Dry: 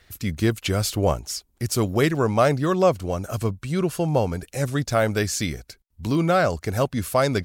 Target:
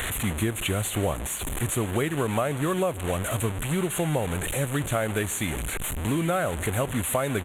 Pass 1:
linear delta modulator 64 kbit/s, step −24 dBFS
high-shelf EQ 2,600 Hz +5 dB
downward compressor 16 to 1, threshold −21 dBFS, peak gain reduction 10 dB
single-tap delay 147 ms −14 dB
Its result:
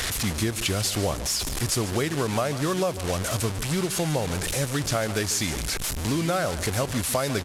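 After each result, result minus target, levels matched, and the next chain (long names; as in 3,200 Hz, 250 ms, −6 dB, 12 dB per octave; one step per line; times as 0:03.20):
4,000 Hz band +5.5 dB; echo-to-direct +8 dB
linear delta modulator 64 kbit/s, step −24 dBFS
high-shelf EQ 2,600 Hz +5 dB
downward compressor 16 to 1, threshold −21 dBFS, peak gain reduction 10 dB
Butterworth band-reject 5,100 Hz, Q 1.2
single-tap delay 147 ms −14 dB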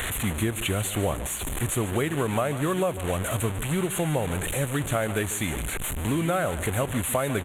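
echo-to-direct +8 dB
linear delta modulator 64 kbit/s, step −24 dBFS
high-shelf EQ 2,600 Hz +5 dB
downward compressor 16 to 1, threshold −21 dBFS, peak gain reduction 10 dB
Butterworth band-reject 5,100 Hz, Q 1.2
single-tap delay 147 ms −22 dB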